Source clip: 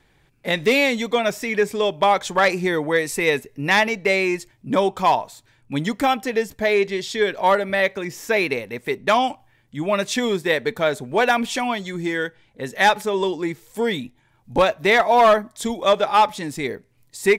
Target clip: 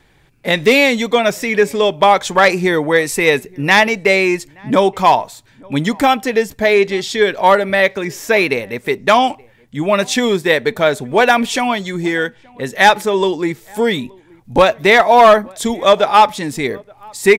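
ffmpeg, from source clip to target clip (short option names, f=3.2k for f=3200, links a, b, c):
-filter_complex "[0:a]asplit=2[a][b];[b]adelay=874.6,volume=-27dB,highshelf=f=4k:g=-19.7[c];[a][c]amix=inputs=2:normalize=0,volume=6.5dB"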